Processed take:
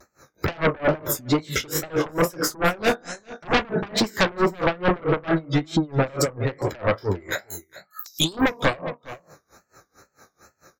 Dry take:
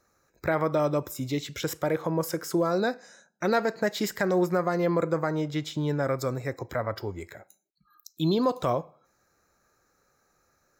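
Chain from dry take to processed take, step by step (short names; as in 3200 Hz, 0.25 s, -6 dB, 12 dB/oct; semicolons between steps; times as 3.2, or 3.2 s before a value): spectral trails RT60 0.37 s; 3.44–3.97 RIAA curve playback; HPF 51 Hz; 7.32–8.33 tilt shelf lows -7 dB, about 680 Hz; spectral gate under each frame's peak -25 dB strong; in parallel at 0 dB: compressor, threshold -36 dBFS, peak gain reduction 18 dB; 5.24–5.92 on the sum: notch comb 480 Hz; vibrato 2.3 Hz 95 cents; flange 1.2 Hz, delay 2.6 ms, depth 8.7 ms, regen -52%; sine folder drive 11 dB, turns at -14 dBFS; on a send: echo 0.407 s -17 dB; on the sum: dB-linear tremolo 4.5 Hz, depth 27 dB; gain +1.5 dB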